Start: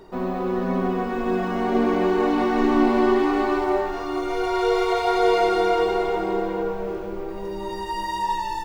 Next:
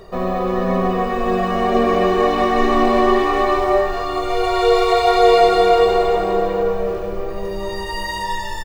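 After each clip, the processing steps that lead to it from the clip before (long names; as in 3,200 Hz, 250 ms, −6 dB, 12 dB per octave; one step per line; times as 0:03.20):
comb filter 1.7 ms, depth 72%
level +5.5 dB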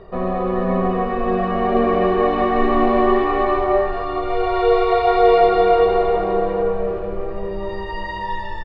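high-frequency loss of the air 360 metres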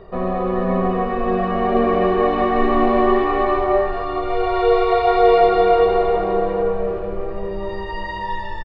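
downsampling to 22,050 Hz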